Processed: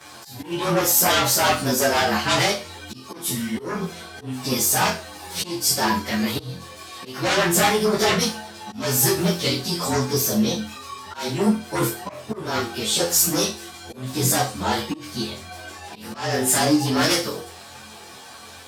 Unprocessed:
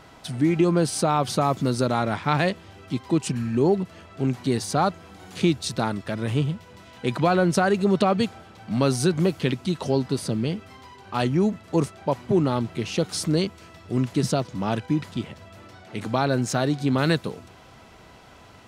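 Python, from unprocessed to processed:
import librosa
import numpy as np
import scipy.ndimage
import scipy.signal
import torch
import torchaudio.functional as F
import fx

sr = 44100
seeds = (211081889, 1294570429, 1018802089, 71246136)

y = fx.partial_stretch(x, sr, pct=109)
y = fx.low_shelf(y, sr, hz=330.0, db=-11.5)
y = fx.fold_sine(y, sr, drive_db=11, ceiling_db=-13.0)
y = fx.room_flutter(y, sr, wall_m=4.0, rt60_s=0.34)
y = fx.auto_swell(y, sr, attack_ms=283.0)
y = scipy.signal.sosfilt(scipy.signal.butter(2, 69.0, 'highpass', fs=sr, output='sos'), y)
y = fx.peak_eq(y, sr, hz=10000.0, db=7.5, octaves=2.2)
y = fx.ensemble(y, sr)
y = y * librosa.db_to_amplitude(-2.0)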